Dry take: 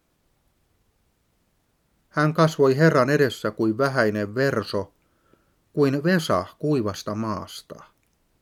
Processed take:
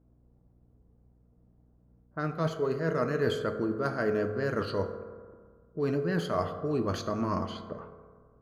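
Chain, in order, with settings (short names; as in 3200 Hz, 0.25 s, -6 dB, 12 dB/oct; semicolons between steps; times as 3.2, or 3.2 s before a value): high shelf 4300 Hz -9.5 dB; reverse; compressor 20:1, threshold -26 dBFS, peak gain reduction 15.5 dB; reverse; low-pass opened by the level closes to 570 Hz, open at -27.5 dBFS; hum 60 Hz, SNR 31 dB; on a send: reverb RT60 1.7 s, pre-delay 3 ms, DRR 6 dB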